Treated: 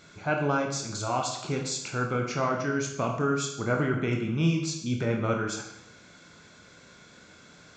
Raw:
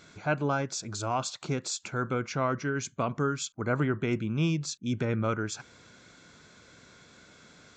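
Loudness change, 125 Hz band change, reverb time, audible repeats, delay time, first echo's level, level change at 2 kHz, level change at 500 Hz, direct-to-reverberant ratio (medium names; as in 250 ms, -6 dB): +2.0 dB, +1.5 dB, 0.85 s, no echo, no echo, no echo, +2.5 dB, +2.5 dB, 1.0 dB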